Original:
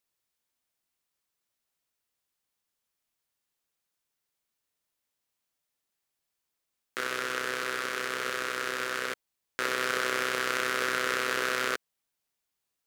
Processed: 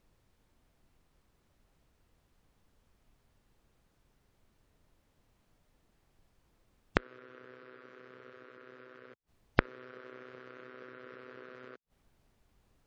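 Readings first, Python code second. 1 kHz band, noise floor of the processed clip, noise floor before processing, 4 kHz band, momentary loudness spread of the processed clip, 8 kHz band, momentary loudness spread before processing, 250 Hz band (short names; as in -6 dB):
-12.0 dB, -74 dBFS, -84 dBFS, -19.0 dB, 21 LU, under -30 dB, 7 LU, -2.0 dB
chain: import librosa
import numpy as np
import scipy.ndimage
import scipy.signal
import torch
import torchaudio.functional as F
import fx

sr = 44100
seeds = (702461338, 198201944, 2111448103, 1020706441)

y = fx.spec_gate(x, sr, threshold_db=-20, keep='strong')
y = fx.gate_flip(y, sr, shuts_db=-30.0, range_db=-36)
y = fx.tilt_eq(y, sr, slope=-4.5)
y = y * 10.0 ** (15.0 / 20.0)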